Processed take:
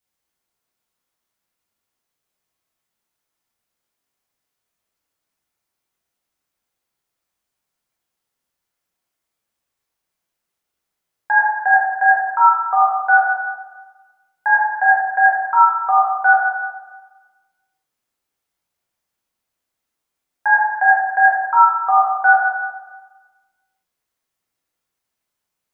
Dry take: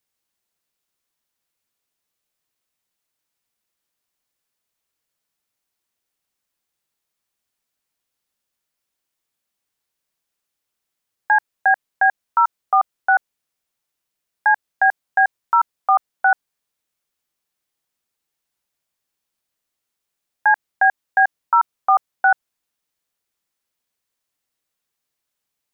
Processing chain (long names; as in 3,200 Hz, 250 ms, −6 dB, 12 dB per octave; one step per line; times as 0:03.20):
dense smooth reverb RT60 1.3 s, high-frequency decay 0.3×, DRR −6 dB
level −4.5 dB